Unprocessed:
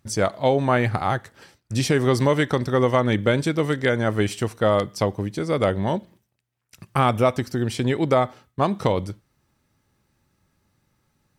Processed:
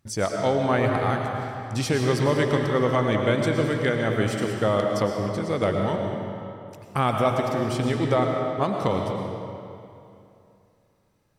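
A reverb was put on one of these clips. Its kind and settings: algorithmic reverb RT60 2.7 s, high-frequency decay 0.75×, pre-delay 70 ms, DRR 1.5 dB; trim -4 dB

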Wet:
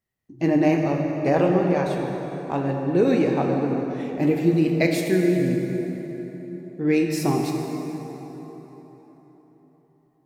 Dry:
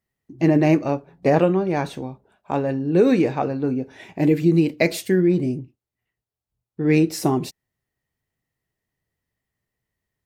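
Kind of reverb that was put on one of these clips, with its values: plate-style reverb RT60 4.3 s, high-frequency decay 0.6×, DRR 1 dB; trim -3.5 dB

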